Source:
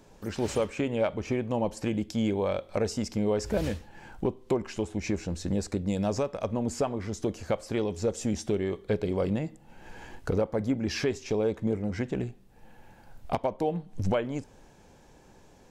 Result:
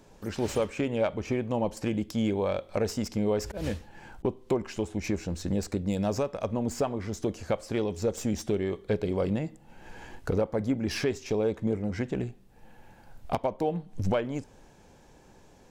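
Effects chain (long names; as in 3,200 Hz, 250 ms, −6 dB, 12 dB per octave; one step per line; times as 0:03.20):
stylus tracing distortion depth 0.04 ms
0:03.35–0:04.25: volume swells 154 ms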